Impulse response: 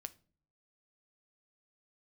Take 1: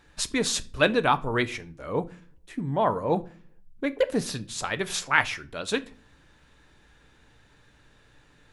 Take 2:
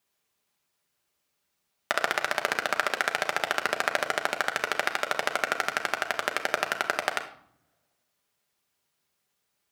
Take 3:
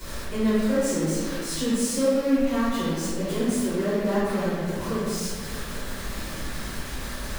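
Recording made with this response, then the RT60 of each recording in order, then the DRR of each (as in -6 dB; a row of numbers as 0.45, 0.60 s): 1; 0.45, 0.65, 2.0 s; 11.0, 4.0, -16.5 dB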